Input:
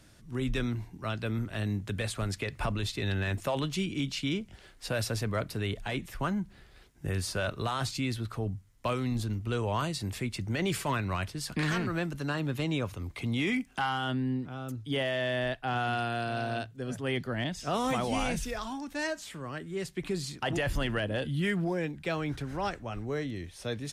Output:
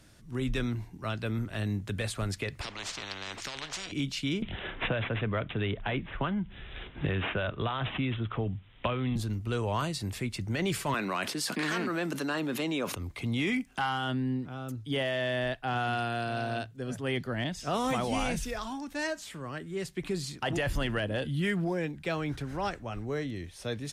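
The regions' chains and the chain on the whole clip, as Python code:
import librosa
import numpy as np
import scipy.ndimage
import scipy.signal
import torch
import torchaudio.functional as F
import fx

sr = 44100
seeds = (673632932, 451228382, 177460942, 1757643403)

y = fx.chain(x, sr, fx.air_absorb(metres=170.0),
    fx.spectral_comp(ratio=10.0), at=(2.61, 3.92))
y = fx.chain(y, sr, fx.resample_bad(factor=6, down='none', up='filtered'),
    fx.band_squash(depth_pct=100), at=(4.42, 9.16))
y = fx.chain(y, sr, fx.highpass(hz=210.0, slope=24),
    fx.env_flatten(amount_pct=70), at=(10.94, 12.95))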